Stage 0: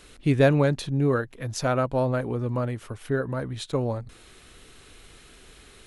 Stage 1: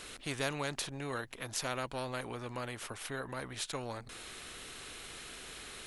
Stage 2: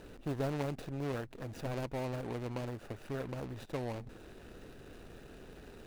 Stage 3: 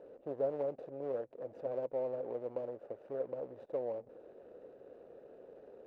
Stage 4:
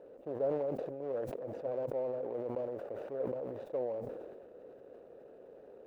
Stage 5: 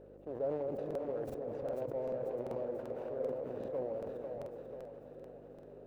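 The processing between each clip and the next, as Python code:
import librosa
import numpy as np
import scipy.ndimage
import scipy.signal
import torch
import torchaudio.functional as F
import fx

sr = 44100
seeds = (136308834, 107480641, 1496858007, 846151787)

y1 = fx.low_shelf(x, sr, hz=350.0, db=-8.0)
y1 = fx.spectral_comp(y1, sr, ratio=2.0)
y1 = y1 * 10.0 ** (-6.0 / 20.0)
y2 = scipy.signal.medfilt(y1, 41)
y2 = y2 * 10.0 ** (4.5 / 20.0)
y3 = fx.bandpass_q(y2, sr, hz=530.0, q=4.6)
y3 = y3 * 10.0 ** (7.5 / 20.0)
y4 = fx.sustainer(y3, sr, db_per_s=32.0)
y5 = fx.dmg_buzz(y4, sr, base_hz=50.0, harmonics=8, level_db=-57.0, tilt_db=-1, odd_only=False)
y5 = fx.echo_split(y5, sr, split_hz=470.0, low_ms=332, high_ms=491, feedback_pct=52, wet_db=-4.0)
y5 = fx.buffer_crackle(y5, sr, first_s=0.86, period_s=0.39, block=2048, kind='repeat')
y5 = y5 * 10.0 ** (-3.0 / 20.0)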